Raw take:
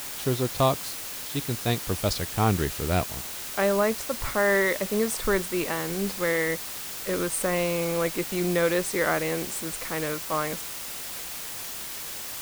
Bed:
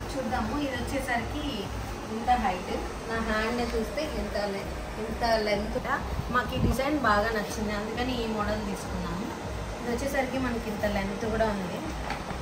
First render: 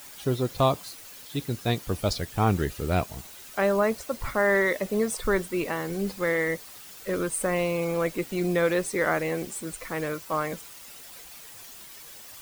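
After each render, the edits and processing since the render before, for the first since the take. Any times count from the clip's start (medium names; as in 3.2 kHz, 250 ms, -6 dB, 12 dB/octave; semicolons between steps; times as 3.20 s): noise reduction 11 dB, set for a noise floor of -36 dBFS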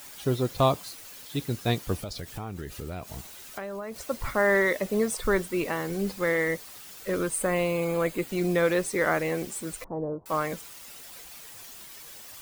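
2.02–3.96 s: compression 8:1, threshold -32 dBFS; 7.40–8.28 s: band-stop 5.6 kHz, Q 5.3; 9.84–10.26 s: elliptic low-pass 900 Hz, stop band 80 dB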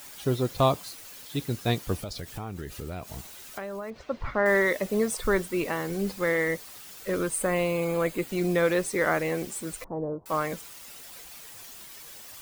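3.90–4.46 s: distance through air 230 m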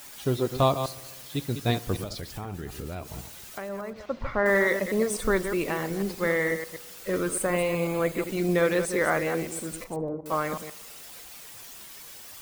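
chunks repeated in reverse 123 ms, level -8.5 dB; filtered feedback delay 70 ms, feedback 76%, low-pass 3.4 kHz, level -23 dB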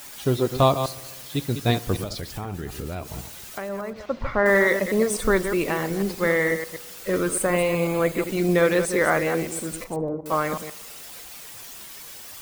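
trim +4 dB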